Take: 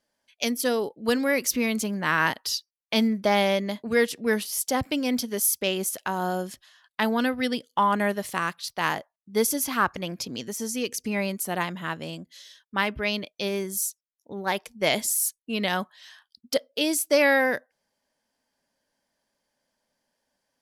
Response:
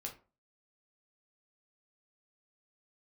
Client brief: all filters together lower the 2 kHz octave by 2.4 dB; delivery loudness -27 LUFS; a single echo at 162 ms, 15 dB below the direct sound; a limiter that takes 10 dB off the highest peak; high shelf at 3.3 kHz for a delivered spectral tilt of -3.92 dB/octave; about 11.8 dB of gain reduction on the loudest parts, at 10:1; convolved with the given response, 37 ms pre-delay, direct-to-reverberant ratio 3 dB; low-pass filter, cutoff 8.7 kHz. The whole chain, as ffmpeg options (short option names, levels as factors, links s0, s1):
-filter_complex "[0:a]lowpass=8700,equalizer=f=2000:t=o:g=-4,highshelf=f=3300:g=3.5,acompressor=threshold=0.0398:ratio=10,alimiter=limit=0.075:level=0:latency=1,aecho=1:1:162:0.178,asplit=2[s0][s1];[1:a]atrim=start_sample=2205,adelay=37[s2];[s1][s2]afir=irnorm=-1:irlink=0,volume=0.891[s3];[s0][s3]amix=inputs=2:normalize=0,volume=1.78"